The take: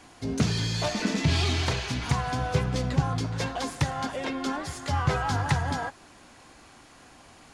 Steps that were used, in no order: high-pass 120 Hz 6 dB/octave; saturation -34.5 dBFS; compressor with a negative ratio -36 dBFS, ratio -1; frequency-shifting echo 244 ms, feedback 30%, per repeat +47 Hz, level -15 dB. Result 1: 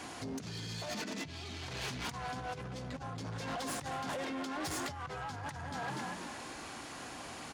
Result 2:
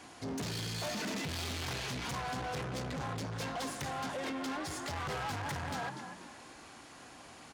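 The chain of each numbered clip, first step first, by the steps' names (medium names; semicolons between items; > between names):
frequency-shifting echo > compressor with a negative ratio > saturation > high-pass; frequency-shifting echo > saturation > high-pass > compressor with a negative ratio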